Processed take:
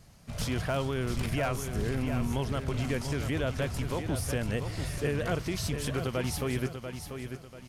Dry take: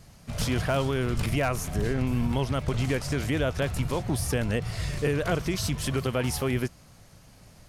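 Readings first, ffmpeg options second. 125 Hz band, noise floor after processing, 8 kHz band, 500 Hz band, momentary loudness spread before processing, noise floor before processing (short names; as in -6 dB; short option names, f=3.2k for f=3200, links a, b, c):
-3.5 dB, -49 dBFS, -4.0 dB, -3.5 dB, 3 LU, -53 dBFS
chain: -af "aecho=1:1:690|1380|2070|2760:0.398|0.143|0.0516|0.0186,volume=-4.5dB"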